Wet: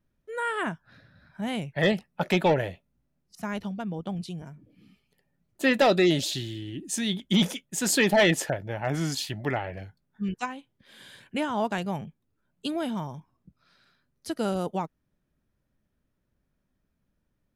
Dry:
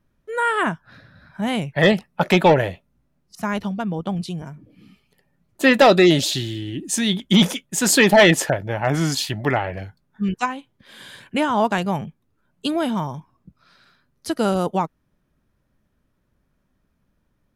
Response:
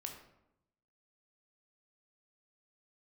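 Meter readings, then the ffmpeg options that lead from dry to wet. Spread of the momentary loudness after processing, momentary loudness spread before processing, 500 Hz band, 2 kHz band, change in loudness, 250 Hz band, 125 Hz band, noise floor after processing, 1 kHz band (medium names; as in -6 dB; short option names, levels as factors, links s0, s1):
17 LU, 17 LU, -8.0 dB, -8.0 dB, -8.0 dB, -7.5 dB, -7.5 dB, -77 dBFS, -9.0 dB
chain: -af "equalizer=f=1100:w=2.1:g=-3.5,volume=0.422"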